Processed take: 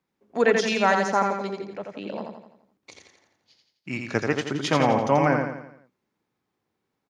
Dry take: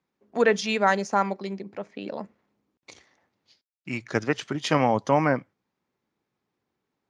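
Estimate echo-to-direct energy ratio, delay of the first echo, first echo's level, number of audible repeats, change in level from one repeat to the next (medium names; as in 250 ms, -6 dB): -3.5 dB, 85 ms, -4.5 dB, 5, -6.5 dB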